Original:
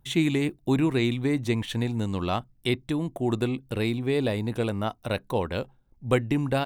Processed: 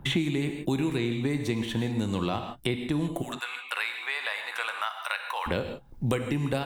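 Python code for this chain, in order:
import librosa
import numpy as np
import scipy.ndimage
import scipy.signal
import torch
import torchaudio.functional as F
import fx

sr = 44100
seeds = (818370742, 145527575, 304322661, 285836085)

y = fx.recorder_agc(x, sr, target_db=-16.5, rise_db_per_s=8.3, max_gain_db=30)
y = fx.highpass(y, sr, hz=1100.0, slope=24, at=(3.21, 5.46), fade=0.02)
y = fx.rev_gated(y, sr, seeds[0], gate_ms=180, shape='flat', drr_db=6.0)
y = fx.band_squash(y, sr, depth_pct=100)
y = y * librosa.db_to_amplitude(-4.0)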